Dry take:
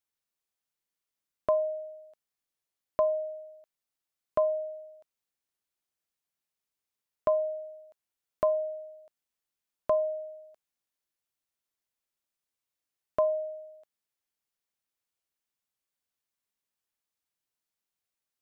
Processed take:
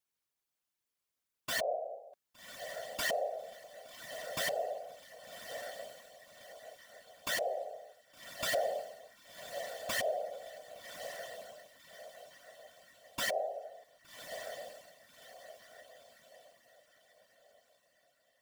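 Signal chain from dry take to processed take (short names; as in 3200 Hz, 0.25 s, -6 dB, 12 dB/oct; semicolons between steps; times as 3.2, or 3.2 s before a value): wrapped overs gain 24.5 dB; limiter -30 dBFS, peak gain reduction 5.5 dB; diffused feedback echo 1.17 s, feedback 41%, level -8.5 dB; whisperiser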